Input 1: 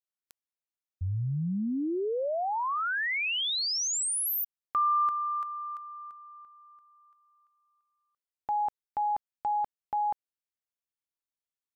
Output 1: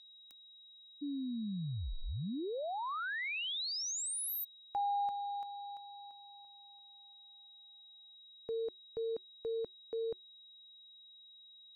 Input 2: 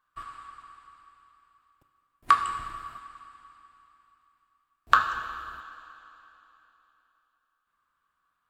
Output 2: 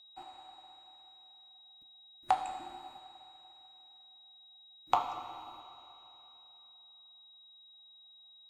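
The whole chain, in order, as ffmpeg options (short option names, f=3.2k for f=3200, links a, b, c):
-af "aeval=exprs='val(0)+0.00447*sin(2*PI*4200*n/s)':c=same,afreqshift=-380,volume=-8.5dB"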